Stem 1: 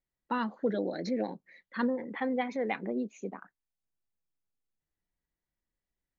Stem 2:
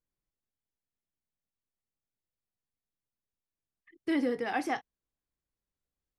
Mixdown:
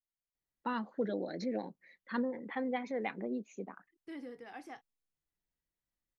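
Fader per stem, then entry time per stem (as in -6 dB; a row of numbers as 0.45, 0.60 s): -4.5, -16.5 dB; 0.35, 0.00 s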